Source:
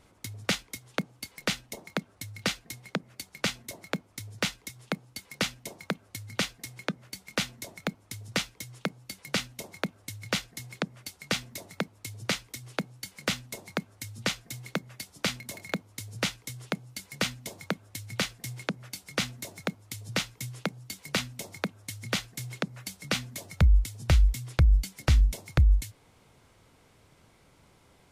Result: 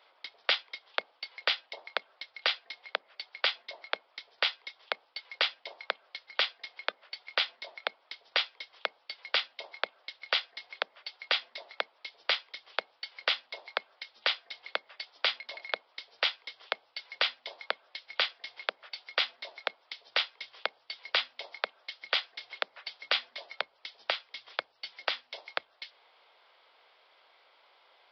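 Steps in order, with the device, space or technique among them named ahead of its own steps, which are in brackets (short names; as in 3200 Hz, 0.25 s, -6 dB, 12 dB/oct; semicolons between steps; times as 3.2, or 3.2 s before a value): musical greeting card (downsampling 11025 Hz; HPF 570 Hz 24 dB/oct; bell 3300 Hz +5 dB 0.29 oct); gain +1.5 dB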